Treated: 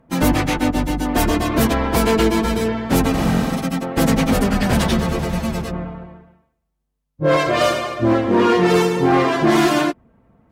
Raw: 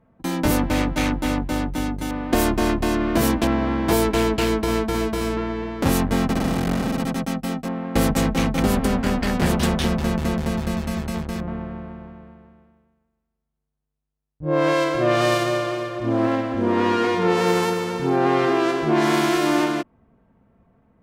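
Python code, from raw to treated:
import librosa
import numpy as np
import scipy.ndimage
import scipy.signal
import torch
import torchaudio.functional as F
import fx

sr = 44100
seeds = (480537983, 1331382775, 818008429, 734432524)

y = fx.stretch_vocoder_free(x, sr, factor=0.5)
y = fx.clip_asym(y, sr, top_db=-17.0, bottom_db=-15.0)
y = y * librosa.db_to_amplitude(7.5)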